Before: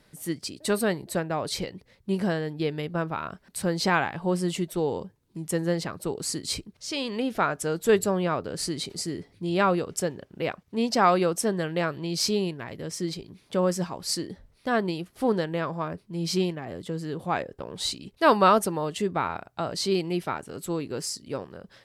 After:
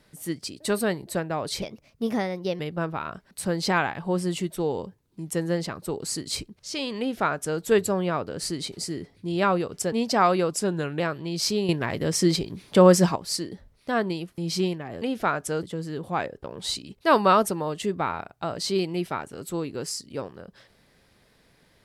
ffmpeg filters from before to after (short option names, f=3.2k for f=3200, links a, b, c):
-filter_complex "[0:a]asplit=11[a][b][c][d][e][f][g][h][i][j][k];[a]atrim=end=1.624[l];[b]atrim=start=1.62:end=2.77,asetpts=PTS-STARTPTS,asetrate=52038,aresample=44100[m];[c]atrim=start=2.766:end=10.102[n];[d]atrim=start=10.748:end=11.334[o];[e]atrim=start=11.33:end=11.78,asetpts=PTS-STARTPTS,asetrate=40131,aresample=44100[p];[f]atrim=start=11.776:end=12.472[q];[g]atrim=start=12.468:end=13.942,asetpts=PTS-STARTPTS,volume=9.5dB[r];[h]atrim=start=13.938:end=15.162[s];[i]atrim=start=16.148:end=16.792[t];[j]atrim=start=7.168:end=7.782[u];[k]atrim=start=16.788[v];[l][m]acrossfade=d=0.004:c1=hsin:c2=hsin[w];[w][n]acrossfade=d=0.004:c1=hsin:c2=hsin[x];[x][o]acrossfade=d=0.004:c1=hsin:c2=hsin[y];[y][p]acrossfade=d=0.004:c1=hsin:c2=hsin[z];[z][q]acrossfade=d=0.004:c1=hsin:c2=hsin[aa];[aa][r]acrossfade=d=0.004:c1=hsin:c2=hsin[ab];[ab][s]acrossfade=d=0.004:c1=hsin:c2=hsin[ac];[ac][t]acrossfade=d=0.004:c1=hsin:c2=hsin[ad];[ad][u]acrossfade=d=0.004:c1=hsin:c2=hsin[ae];[ae][v]acrossfade=d=0.004:c1=hsin:c2=hsin"